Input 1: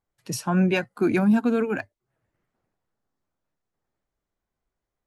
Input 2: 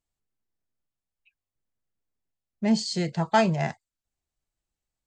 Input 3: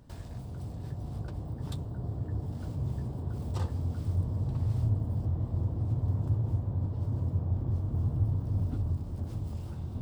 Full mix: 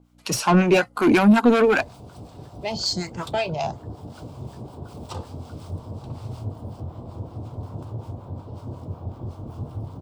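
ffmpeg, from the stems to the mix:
-filter_complex "[0:a]acontrast=58,aeval=exprs='val(0)+0.00224*(sin(2*PI*60*n/s)+sin(2*PI*2*60*n/s)/2+sin(2*PI*3*60*n/s)/3+sin(2*PI*4*60*n/s)/4+sin(2*PI*5*60*n/s)/5)':c=same,volume=0.5dB[a];[1:a]alimiter=limit=-15.5dB:level=0:latency=1:release=220,asplit=2[b][c];[c]afreqshift=1.2[d];[b][d]amix=inputs=2:normalize=1,volume=-1dB[e];[2:a]adelay=1550,volume=-1.5dB[f];[a][e][f]amix=inputs=3:normalize=0,equalizer=f=1.8k:t=o:w=0.36:g=-12,asplit=2[g][h];[h]highpass=f=720:p=1,volume=20dB,asoftclip=type=tanh:threshold=-5.5dB[i];[g][i]amix=inputs=2:normalize=0,lowpass=f=5.4k:p=1,volume=-6dB,acrossover=split=790[j][k];[j]aeval=exprs='val(0)*(1-0.7/2+0.7/2*cos(2*PI*5.4*n/s))':c=same[l];[k]aeval=exprs='val(0)*(1-0.7/2-0.7/2*cos(2*PI*5.4*n/s))':c=same[m];[l][m]amix=inputs=2:normalize=0"

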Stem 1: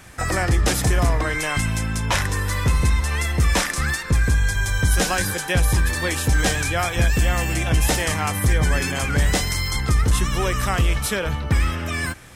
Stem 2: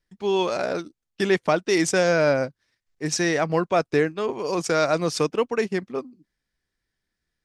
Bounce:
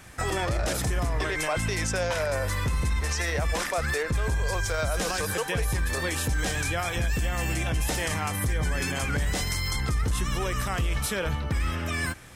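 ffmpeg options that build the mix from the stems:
-filter_complex "[0:a]volume=-3.5dB[a];[1:a]highpass=f=480:w=0.5412,highpass=f=480:w=1.3066,volume=-1dB[b];[a][b]amix=inputs=2:normalize=0,alimiter=limit=-18.5dB:level=0:latency=1:release=63"

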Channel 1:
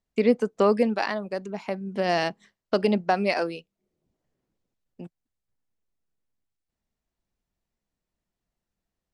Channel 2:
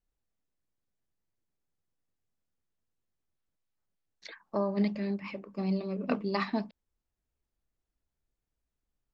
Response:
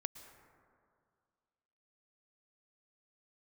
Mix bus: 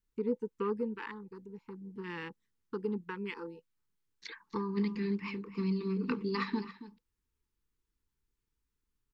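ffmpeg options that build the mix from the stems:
-filter_complex "[0:a]afwtdn=0.0282,volume=-12dB[a];[1:a]acompressor=threshold=-29dB:ratio=6,volume=1dB,asplit=2[b][c];[c]volume=-15dB,aecho=0:1:275:1[d];[a][b][d]amix=inputs=3:normalize=0,asuperstop=centerf=650:order=20:qfactor=1.9"

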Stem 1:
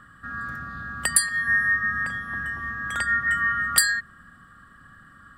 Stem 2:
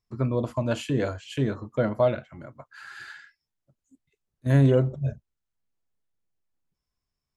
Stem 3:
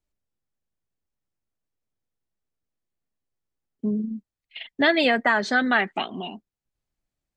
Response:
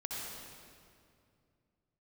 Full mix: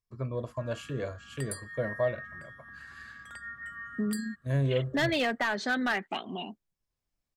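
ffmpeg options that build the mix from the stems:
-filter_complex "[0:a]adelay=350,volume=-19dB[a];[1:a]aecho=1:1:1.8:0.41,volume=-9dB[b];[2:a]adelay=150,volume=-3dB[c];[a][c]amix=inputs=2:normalize=0,asoftclip=type=hard:threshold=-19dB,alimiter=limit=-23dB:level=0:latency=1:release=297,volume=0dB[d];[b][d]amix=inputs=2:normalize=0"

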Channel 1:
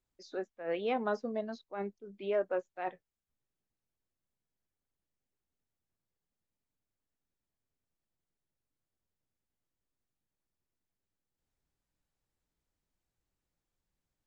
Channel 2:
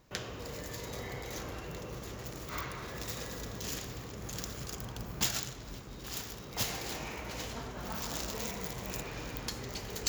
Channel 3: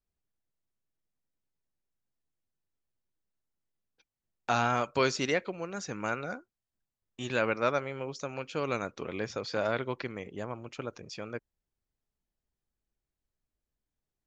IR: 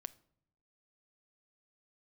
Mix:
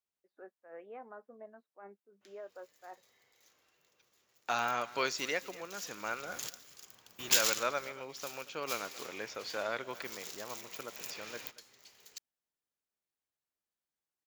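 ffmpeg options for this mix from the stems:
-filter_complex "[0:a]lowpass=f=1.8k:w=0.5412,lowpass=f=1.8k:w=1.3066,alimiter=level_in=1.5dB:limit=-24dB:level=0:latency=1:release=281,volume=-1.5dB,adelay=50,volume=-8.5dB[a];[1:a]adynamicequalizer=threshold=0.002:dfrequency=1700:dqfactor=0.7:tfrequency=1700:tqfactor=0.7:attack=5:release=100:ratio=0.375:range=3.5:mode=boostabove:tftype=highshelf,adelay=2100,volume=5dB,afade=t=in:st=5.95:d=0.51:silence=0.237137,afade=t=out:st=7.62:d=0.45:silence=0.266073,afade=t=in:st=10.76:d=0.55:silence=0.473151[b];[2:a]volume=-2.5dB,asplit=3[c][d][e];[d]volume=-18.5dB[f];[e]apad=whole_len=537268[g];[b][g]sidechaingate=range=-15dB:threshold=-54dB:ratio=16:detection=peak[h];[f]aecho=0:1:232:1[i];[a][h][c][i]amix=inputs=4:normalize=0,highpass=f=750:p=1"

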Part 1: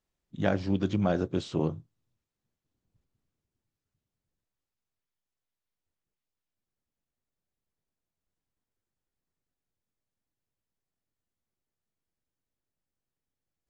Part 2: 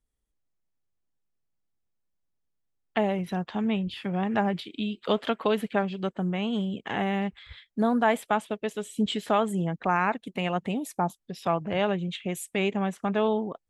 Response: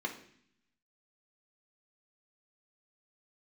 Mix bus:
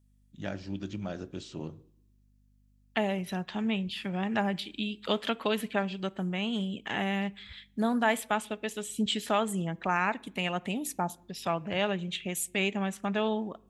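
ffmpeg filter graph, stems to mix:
-filter_complex "[0:a]aeval=exprs='val(0)+0.002*(sin(2*PI*50*n/s)+sin(2*PI*2*50*n/s)/2+sin(2*PI*3*50*n/s)/3+sin(2*PI*4*50*n/s)/4+sin(2*PI*5*50*n/s)/5)':c=same,volume=-11.5dB,asplit=2[a][b];[b]volume=-14dB[c];[1:a]volume=-5dB,asplit=3[d][e][f];[e]volume=-18dB[g];[f]apad=whole_len=603846[h];[a][h]sidechaincompress=threshold=-42dB:ratio=8:attack=16:release=179[i];[2:a]atrim=start_sample=2205[j];[c][g]amix=inputs=2:normalize=0[k];[k][j]afir=irnorm=-1:irlink=0[l];[i][d][l]amix=inputs=3:normalize=0,highshelf=f=2k:g=11"

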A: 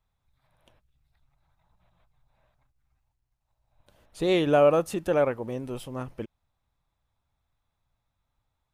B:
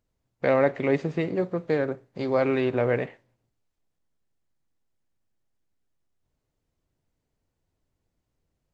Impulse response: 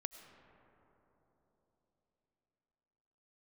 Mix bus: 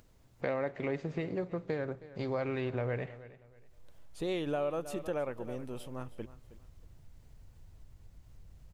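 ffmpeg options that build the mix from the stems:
-filter_complex "[0:a]volume=-7dB,asplit=2[a][b];[b]volume=-17dB[c];[1:a]acompressor=mode=upward:threshold=-43dB:ratio=2.5,asubboost=boost=4.5:cutoff=130,volume=-4.5dB,asplit=2[d][e];[e]volume=-22dB[f];[c][f]amix=inputs=2:normalize=0,aecho=0:1:317|634|951|1268:1|0.26|0.0676|0.0176[g];[a][d][g]amix=inputs=3:normalize=0,acompressor=threshold=-32dB:ratio=3"

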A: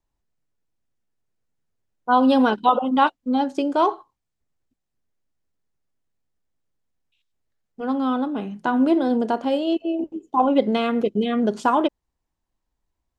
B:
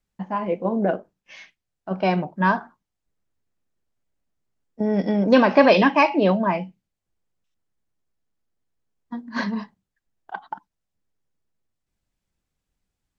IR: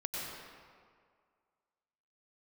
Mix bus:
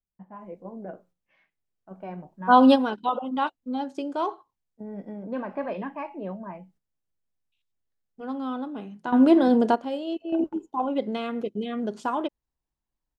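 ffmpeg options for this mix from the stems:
-filter_complex "[0:a]adelay=400,volume=1.5dB[a];[1:a]lowpass=1.7k,lowshelf=f=130:g=5,flanger=delay=5:depth=4.1:regen=-82:speed=0.33:shape=sinusoidal,volume=-12.5dB,asplit=2[b][c];[c]apad=whole_len=598928[d];[a][d]sidechaingate=range=-10dB:threshold=-60dB:ratio=16:detection=peak[e];[e][b]amix=inputs=2:normalize=0"

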